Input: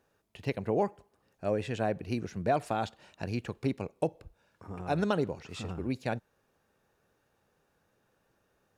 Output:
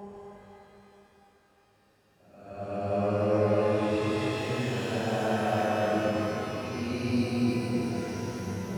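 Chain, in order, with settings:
flutter between parallel walls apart 8.6 metres, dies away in 0.34 s
extreme stretch with random phases 6.2×, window 0.25 s, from 0:00.98
reverb with rising layers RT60 3.2 s, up +12 semitones, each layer −8 dB, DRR 0 dB

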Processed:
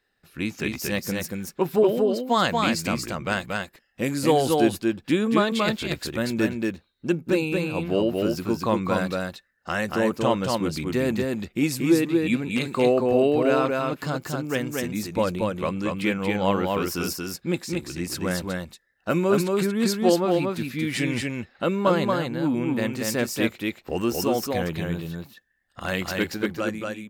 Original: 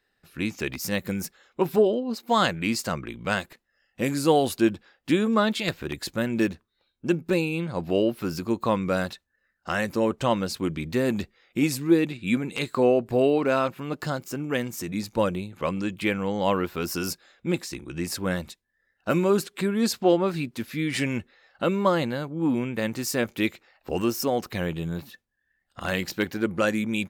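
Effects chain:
fade-out on the ending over 0.85 s
single-tap delay 232 ms −3 dB

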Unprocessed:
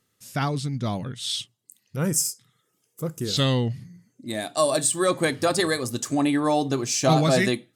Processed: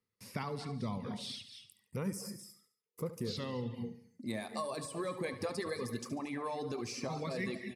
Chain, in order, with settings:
brickwall limiter −16.5 dBFS, peak gain reduction 7.5 dB
reverb whose tail is shaped and stops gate 260 ms rising, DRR 9 dB
downward compressor, threshold −26 dBFS, peak gain reduction 6.5 dB
EQ curve with evenly spaced ripples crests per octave 0.88, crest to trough 8 dB
reverb reduction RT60 0.77 s
high-shelf EQ 4,600 Hz −10 dB
hum removal 425.3 Hz, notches 17
noise gate with hold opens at −57 dBFS
repeating echo 71 ms, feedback 39%, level −13.5 dB
multiband upward and downward compressor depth 40%
level −6.5 dB

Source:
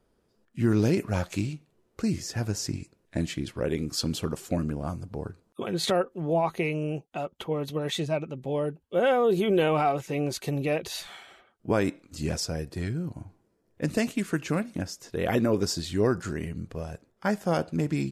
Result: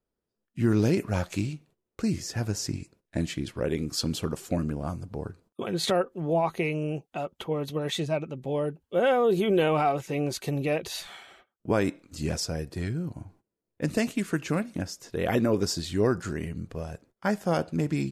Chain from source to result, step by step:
noise gate −56 dBFS, range −16 dB

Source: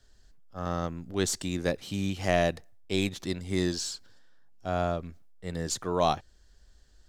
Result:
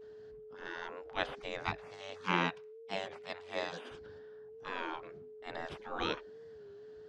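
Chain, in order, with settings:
0:01.67–0:03.92: high-pass filter 280 Hz 24 dB per octave
mains-hum notches 50/100/150/200/250/300/350/400/450 Hz
gate on every frequency bin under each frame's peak −20 dB weak
dynamic equaliser 480 Hz, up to +4 dB, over −56 dBFS, Q 0.73
steady tone 430 Hz −58 dBFS
head-to-tape spacing loss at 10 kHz 38 dB
wow of a warped record 33 1/3 rpm, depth 100 cents
level +11 dB

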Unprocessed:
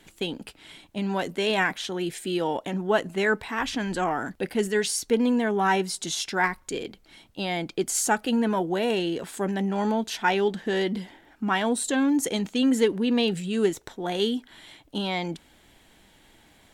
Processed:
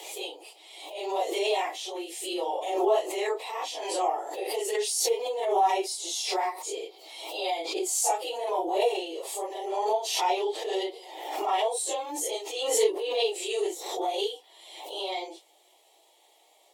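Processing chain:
random phases in long frames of 100 ms
Butterworth high-pass 300 Hz 96 dB per octave
parametric band 750 Hz +4.5 dB 0.26 octaves
phaser with its sweep stopped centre 640 Hz, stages 4
background raised ahead of every attack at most 47 dB per second
level −1 dB

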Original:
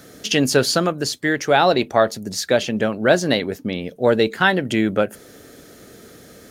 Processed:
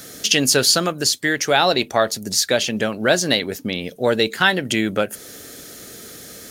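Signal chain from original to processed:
high-shelf EQ 2,400 Hz +11.5 dB
in parallel at −1.5 dB: downward compressor, threshold −24 dBFS, peak gain reduction 15.5 dB
on the sum: level −4.5 dB

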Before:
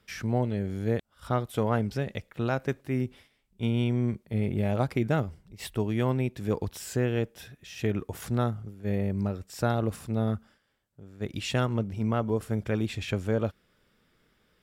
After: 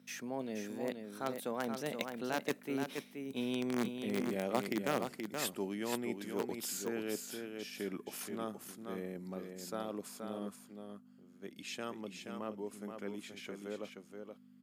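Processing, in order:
source passing by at 0:03.90, 26 m/s, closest 12 metres
high-shelf EQ 6,200 Hz +9 dB
reversed playback
downward compressor 4 to 1, threshold −45 dBFS, peak gain reduction 17.5 dB
reversed playback
mains hum 50 Hz, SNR 12 dB
in parallel at −8 dB: bit-depth reduction 6 bits, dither none
on the sum: high-pass filter 210 Hz 24 dB per octave
single-tap delay 476 ms −6 dB
level +12 dB

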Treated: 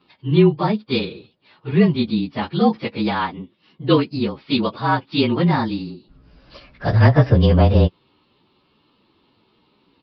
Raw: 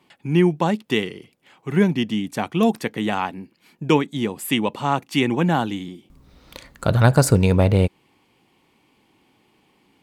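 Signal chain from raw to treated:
partials spread apart or drawn together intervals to 110%
downsampling to 11,025 Hz
level +4 dB

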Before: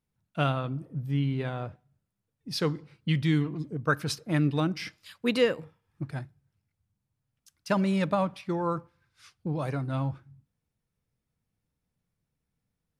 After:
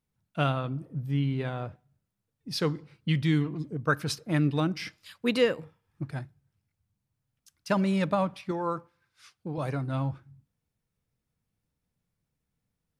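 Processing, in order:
0:08.51–0:09.58: low-shelf EQ 150 Hz −12 dB

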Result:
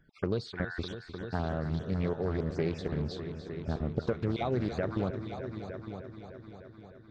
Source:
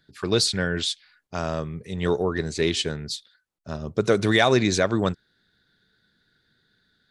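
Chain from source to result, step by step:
time-frequency cells dropped at random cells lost 26%
low-shelf EQ 80 Hz +10 dB
downward compressor 6 to 1, threshold −29 dBFS, peak gain reduction 14.5 dB
head-to-tape spacing loss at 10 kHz 34 dB
echo machine with several playback heads 303 ms, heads all three, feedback 50%, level −13 dB
highs frequency-modulated by the lows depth 0.37 ms
level +2.5 dB

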